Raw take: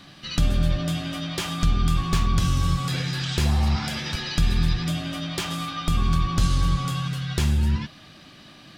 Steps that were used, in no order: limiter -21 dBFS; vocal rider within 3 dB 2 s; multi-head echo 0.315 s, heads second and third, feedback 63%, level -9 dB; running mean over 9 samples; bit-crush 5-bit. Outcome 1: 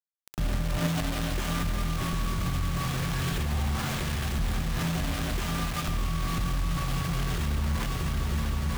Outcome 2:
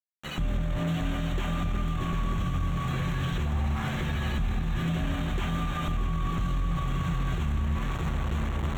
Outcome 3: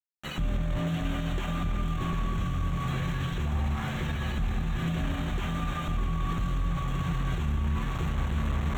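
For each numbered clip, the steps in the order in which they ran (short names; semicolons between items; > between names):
running mean > bit-crush > multi-head echo > vocal rider > limiter; vocal rider > multi-head echo > bit-crush > running mean > limiter; multi-head echo > vocal rider > bit-crush > limiter > running mean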